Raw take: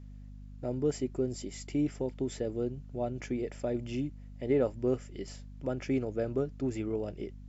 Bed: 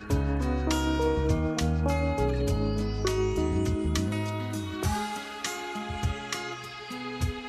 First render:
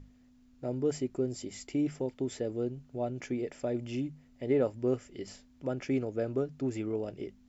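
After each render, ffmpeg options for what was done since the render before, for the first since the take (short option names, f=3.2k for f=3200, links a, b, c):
-af "bandreject=f=50:t=h:w=6,bandreject=f=100:t=h:w=6,bandreject=f=150:t=h:w=6,bandreject=f=200:t=h:w=6"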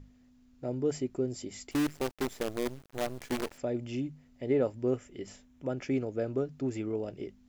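-filter_complex "[0:a]asettb=1/sr,asplit=3[a][b][c];[a]atrim=end=1.714[d];[b]atrim=start=1.71:end=3.58,asetpts=PTS-STARTPTS,afade=t=in:d=0.004:c=qsin,afade=t=out:st=1.866:d=0.004:c=qsin,acrusher=bits=6:dc=4:mix=0:aa=0.000001[e];[c]atrim=start=3.576[f];[d][e]acrossfade=d=0.004:c1=hsin:c2=qsin[g];[g][f]acrossfade=d=0.004:c1=qsin:c2=hsin,asettb=1/sr,asplit=3[h][i][j];[h]atrim=end=4.904[k];[i]atrim=start=4.9:end=5.7,asetpts=PTS-STARTPTS,afade=t=in:d=0.004:c=qsin,afade=t=out:st=0.796:d=0.004:c=qsin,equalizer=f=4.6k:t=o:w=0.34:g=-8[l];[j]atrim=start=5.696[m];[k][l]acrossfade=d=0.004:c1=hsin:c2=qsin[n];[n][m]acrossfade=d=0.004:c1=qsin:c2=hsin"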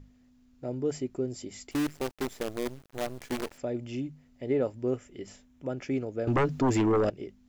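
-filter_complex "[0:a]asettb=1/sr,asplit=3[a][b][c];[a]atrim=end=6.274[d];[b]atrim=start=6.27:end=7.1,asetpts=PTS-STARTPTS,afade=t=in:d=0.004:c=qsin,afade=t=out:st=0.826:d=0.004:c=qsin,aeval=exprs='0.1*sin(PI/2*3.16*val(0)/0.1)':c=same[e];[c]atrim=start=7.096[f];[d][e]acrossfade=d=0.004:c1=hsin:c2=qsin[g];[g][f]acrossfade=d=0.004:c1=qsin:c2=hsin"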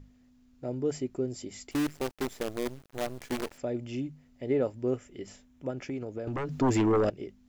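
-filter_complex "[0:a]asettb=1/sr,asplit=3[a][b][c];[a]atrim=end=5.704[d];[b]atrim=start=5.7:end=6.61,asetpts=PTS-STARTPTS,afade=t=in:d=0.004:c=qsin,afade=t=out:st=0.906:d=0.004:c=qsin,acompressor=threshold=-31dB:ratio=6:attack=3.2:release=140:knee=1:detection=peak[e];[c]atrim=start=6.606[f];[d][e]acrossfade=d=0.004:c1=hsin:c2=qsin[g];[g][f]acrossfade=d=0.004:c1=qsin:c2=hsin"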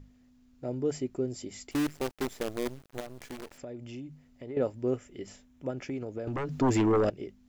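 -filter_complex "[0:a]asettb=1/sr,asplit=3[a][b][c];[a]atrim=end=3.004[d];[b]atrim=start=3:end=4.57,asetpts=PTS-STARTPTS,afade=t=in:d=0.004:c=qsin,afade=t=out:st=1.566:d=0.004:c=qsin,acompressor=threshold=-40dB:ratio=3:attack=3.2:release=140:knee=1:detection=peak[e];[c]atrim=start=4.566[f];[d][e]acrossfade=d=0.004:c1=hsin:c2=qsin[g];[g][f]acrossfade=d=0.004:c1=qsin:c2=hsin"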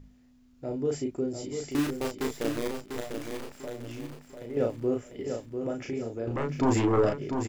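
-filter_complex "[0:a]asplit=2[a][b];[b]adelay=35,volume=-3.5dB[c];[a][c]amix=inputs=2:normalize=0,asplit=2[d][e];[e]aecho=0:1:696|1392|2088|2784:0.473|0.175|0.0648|0.024[f];[d][f]amix=inputs=2:normalize=0"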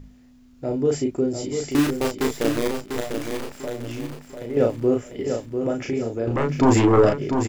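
-af "volume=8dB"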